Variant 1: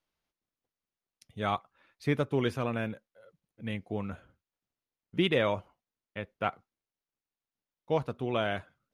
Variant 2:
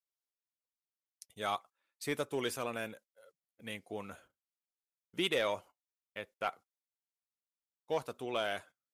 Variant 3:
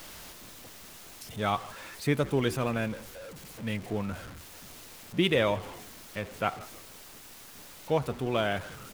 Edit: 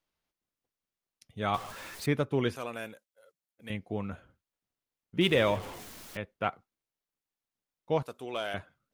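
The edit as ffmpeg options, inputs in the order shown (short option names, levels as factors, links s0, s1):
-filter_complex "[2:a]asplit=2[s0][s1];[1:a]asplit=2[s2][s3];[0:a]asplit=5[s4][s5][s6][s7][s8];[s4]atrim=end=1.542[s9];[s0]atrim=start=1.538:end=2.062[s10];[s5]atrim=start=2.058:end=2.562[s11];[s2]atrim=start=2.558:end=3.702[s12];[s6]atrim=start=3.698:end=5.212[s13];[s1]atrim=start=5.208:end=6.172[s14];[s7]atrim=start=6.168:end=8.032[s15];[s3]atrim=start=8.028:end=8.542[s16];[s8]atrim=start=8.538[s17];[s9][s10]acrossfade=d=0.004:c1=hsin:c2=hsin[s18];[s18][s11]acrossfade=d=0.004:c1=hsin:c2=hsin[s19];[s19][s12]acrossfade=d=0.004:c1=hsin:c2=hsin[s20];[s20][s13]acrossfade=d=0.004:c1=hsin:c2=hsin[s21];[s21][s14]acrossfade=d=0.004:c1=hsin:c2=hsin[s22];[s22][s15]acrossfade=d=0.004:c1=hsin:c2=hsin[s23];[s23][s16]acrossfade=d=0.004:c1=hsin:c2=hsin[s24];[s24][s17]acrossfade=d=0.004:c1=hsin:c2=hsin"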